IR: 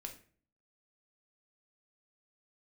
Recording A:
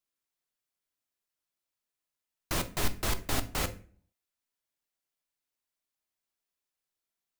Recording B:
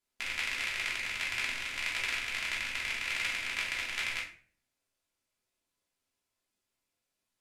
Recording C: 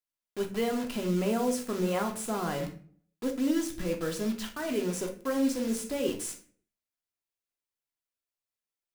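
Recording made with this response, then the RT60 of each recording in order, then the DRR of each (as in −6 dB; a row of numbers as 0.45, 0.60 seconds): C; 0.45, 0.45, 0.45 seconds; 9.0, −6.0, 2.5 decibels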